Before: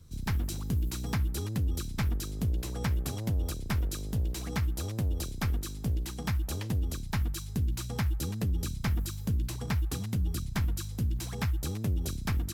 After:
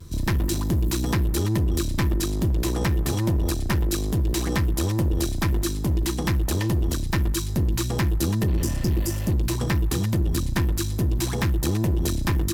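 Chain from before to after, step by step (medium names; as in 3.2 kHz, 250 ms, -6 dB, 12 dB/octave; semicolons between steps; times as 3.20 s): vibrato 0.37 Hz 14 cents; in parallel at 0 dB: peak limiter -28.5 dBFS, peak gain reduction 7 dB; on the sum: spectral replace 8.51–9.31 s, 500–4600 Hz before; one-sided clip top -30.5 dBFS, bottom -22.5 dBFS; small resonant body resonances 340/1000/1800 Hz, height 11 dB, ringing for 95 ms; trim +6.5 dB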